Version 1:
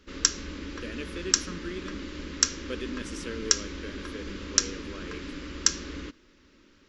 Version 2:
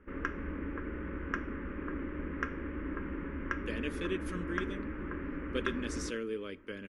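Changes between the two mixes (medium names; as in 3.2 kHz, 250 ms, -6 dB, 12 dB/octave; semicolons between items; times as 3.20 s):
speech: entry +2.85 s; background: add inverse Chebyshev low-pass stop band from 3.9 kHz, stop band 40 dB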